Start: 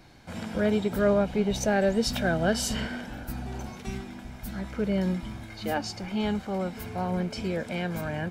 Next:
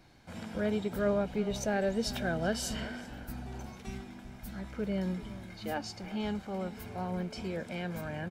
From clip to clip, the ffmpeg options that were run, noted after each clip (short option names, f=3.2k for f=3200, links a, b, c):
-filter_complex "[0:a]asplit=2[a][b];[b]adelay=384.8,volume=-16dB,highshelf=f=4k:g=-8.66[c];[a][c]amix=inputs=2:normalize=0,volume=-6.5dB"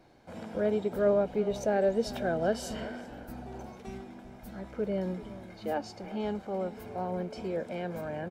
-af "equalizer=f=510:t=o:w=2.2:g=11.5,volume=-5.5dB"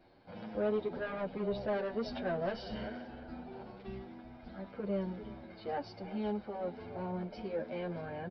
-filter_complex "[0:a]aresample=11025,asoftclip=type=tanh:threshold=-25.5dB,aresample=44100,asplit=2[a][b];[b]adelay=8.6,afreqshift=0.87[c];[a][c]amix=inputs=2:normalize=1"